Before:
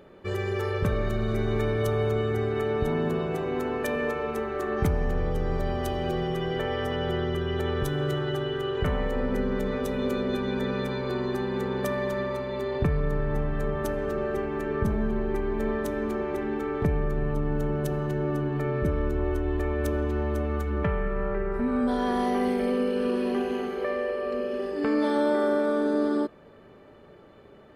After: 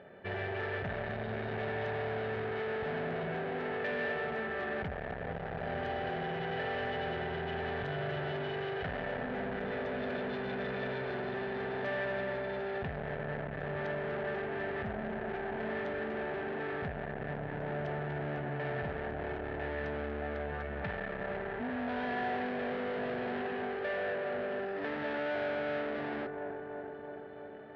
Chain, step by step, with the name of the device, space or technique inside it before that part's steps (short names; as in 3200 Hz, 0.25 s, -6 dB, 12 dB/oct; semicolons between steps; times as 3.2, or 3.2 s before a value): analogue delay pedal into a guitar amplifier (analogue delay 0.334 s, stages 4096, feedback 71%, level -14 dB; tube stage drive 34 dB, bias 0.55; speaker cabinet 88–3600 Hz, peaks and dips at 320 Hz -8 dB, 690 Hz +8 dB, 1100 Hz -7 dB, 1700 Hz +9 dB)